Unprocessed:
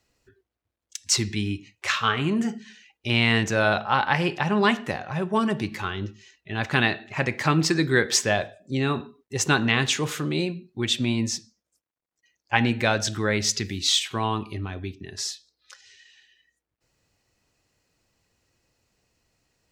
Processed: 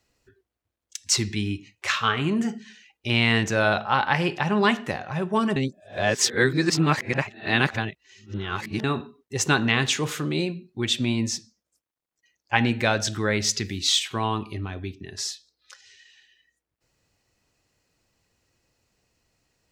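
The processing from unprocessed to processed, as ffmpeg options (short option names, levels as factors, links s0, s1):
-filter_complex "[0:a]asplit=3[s0][s1][s2];[s0]atrim=end=5.562[s3];[s1]atrim=start=5.558:end=8.842,asetpts=PTS-STARTPTS,areverse[s4];[s2]atrim=start=8.838[s5];[s3][s4]acrossfade=d=0.004:c1=hsin:c2=hsin[s6];[s6][s5]acrossfade=d=0.004:c1=hsin:c2=hsin"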